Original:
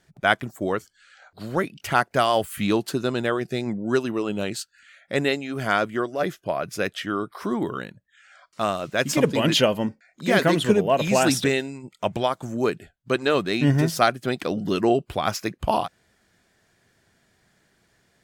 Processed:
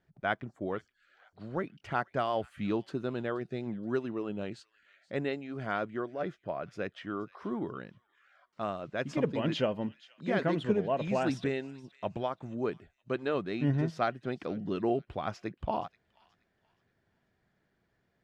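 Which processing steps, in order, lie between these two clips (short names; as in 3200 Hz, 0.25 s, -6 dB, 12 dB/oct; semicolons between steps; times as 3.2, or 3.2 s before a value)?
tape spacing loss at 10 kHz 25 dB; on a send: thin delay 0.476 s, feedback 30%, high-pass 2200 Hz, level -17.5 dB; on the sum: gain -8.5 dB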